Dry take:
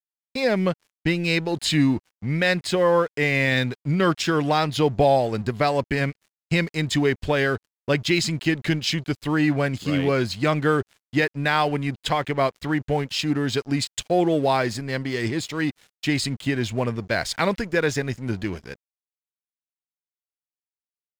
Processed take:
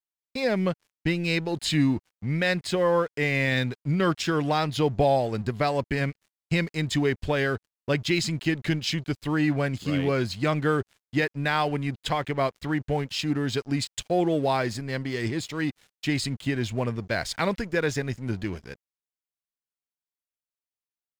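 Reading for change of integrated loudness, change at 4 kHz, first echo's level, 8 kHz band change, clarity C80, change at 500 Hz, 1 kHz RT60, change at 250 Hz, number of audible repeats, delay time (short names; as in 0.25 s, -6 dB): -3.5 dB, -4.0 dB, none, -4.0 dB, none, -3.5 dB, none, -3.0 dB, none, none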